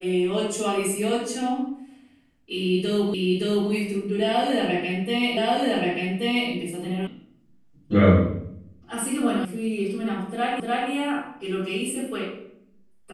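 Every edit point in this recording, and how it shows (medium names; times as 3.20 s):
3.14 s: repeat of the last 0.57 s
5.37 s: repeat of the last 1.13 s
7.07 s: sound stops dead
9.45 s: sound stops dead
10.60 s: repeat of the last 0.3 s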